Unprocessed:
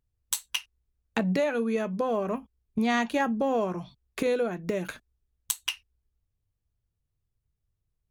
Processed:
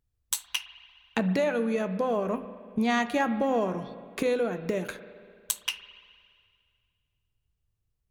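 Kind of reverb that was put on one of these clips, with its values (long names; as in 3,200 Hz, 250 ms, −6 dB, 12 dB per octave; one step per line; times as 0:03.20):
spring reverb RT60 2.1 s, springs 37/57 ms, chirp 35 ms, DRR 11.5 dB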